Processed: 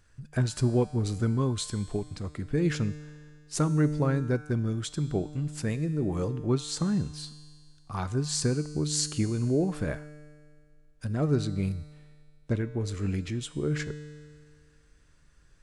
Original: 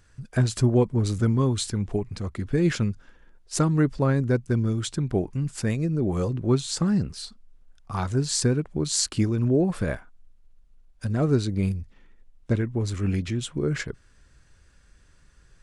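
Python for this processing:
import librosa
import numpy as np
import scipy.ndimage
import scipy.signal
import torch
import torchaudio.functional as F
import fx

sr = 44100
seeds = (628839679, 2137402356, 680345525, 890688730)

y = fx.comb_fb(x, sr, f0_hz=150.0, decay_s=1.9, harmonics='all', damping=0.0, mix_pct=70)
y = F.gain(torch.from_numpy(y), 5.5).numpy()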